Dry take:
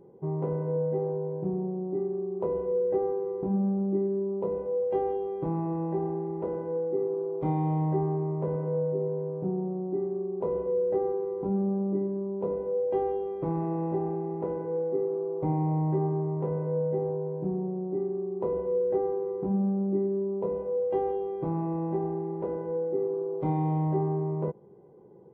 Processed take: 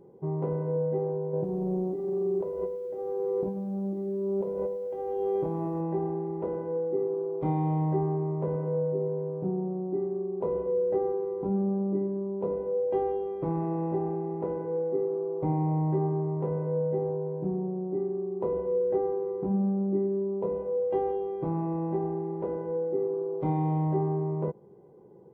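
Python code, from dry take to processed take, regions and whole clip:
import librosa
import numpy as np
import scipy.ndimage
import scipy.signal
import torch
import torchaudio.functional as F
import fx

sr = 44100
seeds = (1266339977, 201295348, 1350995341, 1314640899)

y = fx.chain(x, sr, fx.dynamic_eq(hz=570.0, q=2.8, threshold_db=-43.0, ratio=4.0, max_db=6),
    fx.over_compress(threshold_db=-32.0, ratio=-1.0),
    fx.echo_crushed(ms=107, feedback_pct=55, bits=10, wet_db=-14.5), at=(1.33, 5.81))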